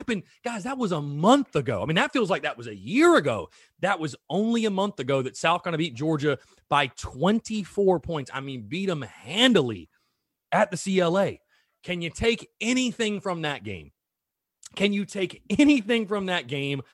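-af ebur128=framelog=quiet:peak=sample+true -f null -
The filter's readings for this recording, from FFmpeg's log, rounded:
Integrated loudness:
  I:         -25.1 LUFS
  Threshold: -35.4 LUFS
Loudness range:
  LRA:         4.4 LU
  Threshold: -45.7 LUFS
  LRA low:   -28.0 LUFS
  LRA high:  -23.6 LUFS
Sample peak:
  Peak:       -6.2 dBFS
True peak:
  Peak:       -6.2 dBFS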